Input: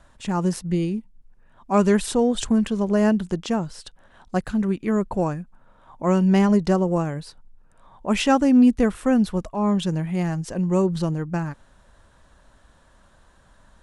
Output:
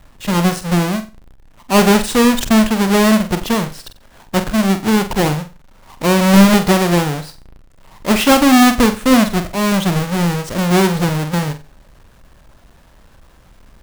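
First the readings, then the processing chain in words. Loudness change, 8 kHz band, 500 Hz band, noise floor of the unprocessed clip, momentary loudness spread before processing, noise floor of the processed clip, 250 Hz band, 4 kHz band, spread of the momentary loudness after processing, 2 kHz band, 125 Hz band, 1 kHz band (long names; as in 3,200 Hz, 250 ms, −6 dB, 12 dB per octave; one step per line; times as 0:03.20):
+7.5 dB, +13.5 dB, +6.0 dB, −56 dBFS, 11 LU, −47 dBFS, +6.5 dB, +14.5 dB, 11 LU, +14.0 dB, +7.0 dB, +10.0 dB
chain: each half-wave held at its own peak
flutter between parallel walls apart 7.9 metres, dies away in 0.3 s
level +3 dB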